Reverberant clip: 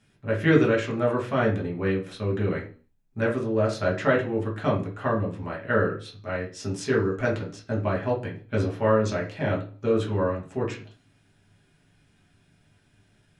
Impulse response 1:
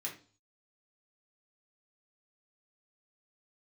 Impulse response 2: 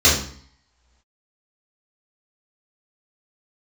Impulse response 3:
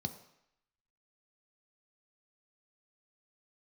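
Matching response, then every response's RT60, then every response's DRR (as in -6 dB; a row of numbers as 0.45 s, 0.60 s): 1; 0.40 s, 0.55 s, 0.75 s; -3.0 dB, -8.5 dB, 7.0 dB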